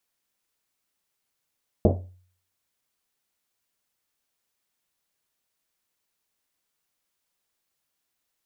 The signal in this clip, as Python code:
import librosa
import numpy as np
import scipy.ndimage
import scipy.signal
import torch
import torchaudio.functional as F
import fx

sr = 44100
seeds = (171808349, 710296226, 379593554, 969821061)

y = fx.risset_drum(sr, seeds[0], length_s=1.1, hz=91.0, decay_s=0.54, noise_hz=410.0, noise_width_hz=550.0, noise_pct=45)